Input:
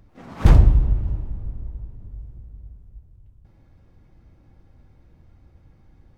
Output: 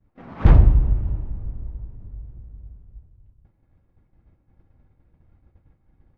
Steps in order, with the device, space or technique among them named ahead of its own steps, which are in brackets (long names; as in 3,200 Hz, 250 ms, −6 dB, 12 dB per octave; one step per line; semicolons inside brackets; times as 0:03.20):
hearing-loss simulation (low-pass filter 2,600 Hz 12 dB per octave; downward expander −44 dBFS)